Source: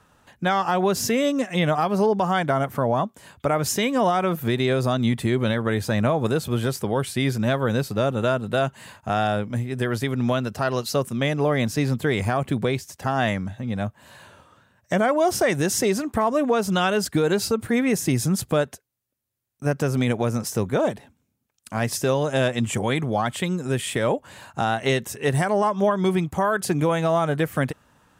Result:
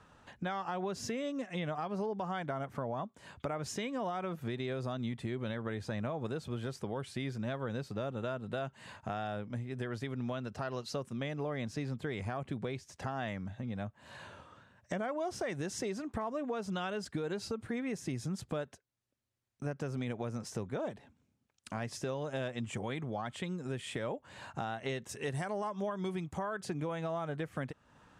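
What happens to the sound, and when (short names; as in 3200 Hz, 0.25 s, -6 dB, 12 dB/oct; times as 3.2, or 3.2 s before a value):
25.09–26.38 high shelf 5000 Hz +8.5 dB
whole clip: LPF 8100 Hz 12 dB/oct; high shelf 6100 Hz -5.5 dB; compressor 2.5:1, threshold -39 dBFS; gain -2 dB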